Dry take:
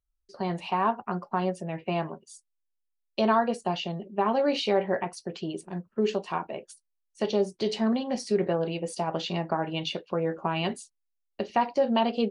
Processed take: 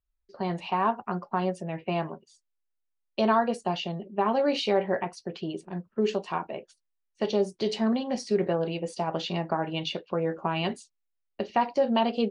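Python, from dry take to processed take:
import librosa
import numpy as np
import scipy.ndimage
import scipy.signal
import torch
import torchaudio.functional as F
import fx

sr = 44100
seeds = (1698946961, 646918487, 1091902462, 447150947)

y = fx.env_lowpass(x, sr, base_hz=2800.0, full_db=-22.5)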